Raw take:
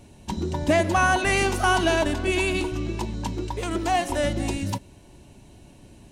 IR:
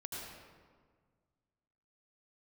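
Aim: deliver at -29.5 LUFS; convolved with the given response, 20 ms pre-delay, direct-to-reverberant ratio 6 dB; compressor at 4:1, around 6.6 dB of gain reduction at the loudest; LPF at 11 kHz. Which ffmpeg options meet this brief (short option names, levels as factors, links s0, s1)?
-filter_complex "[0:a]lowpass=11000,acompressor=threshold=0.0708:ratio=4,asplit=2[s0][s1];[1:a]atrim=start_sample=2205,adelay=20[s2];[s1][s2]afir=irnorm=-1:irlink=0,volume=0.531[s3];[s0][s3]amix=inputs=2:normalize=0,volume=0.708"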